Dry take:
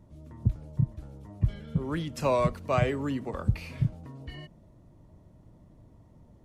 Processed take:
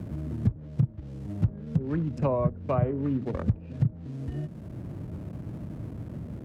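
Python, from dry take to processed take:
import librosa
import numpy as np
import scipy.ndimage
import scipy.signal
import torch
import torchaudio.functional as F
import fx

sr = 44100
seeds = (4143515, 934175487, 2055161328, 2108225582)

p1 = fx.wiener(x, sr, points=41)
p2 = fx.quant_companded(p1, sr, bits=4)
p3 = p1 + (p2 * librosa.db_to_amplitude(-10.5))
p4 = scipy.signal.sosfilt(scipy.signal.butter(2, 83.0, 'highpass', fs=sr, output='sos'), p3)
p5 = fx.low_shelf(p4, sr, hz=450.0, db=5.5)
p6 = fx.env_lowpass_down(p5, sr, base_hz=1000.0, full_db=-17.5)
p7 = fx.high_shelf(p6, sr, hz=6900.0, db=9.0)
p8 = fx.band_squash(p7, sr, depth_pct=70)
y = p8 * librosa.db_to_amplitude(-3.0)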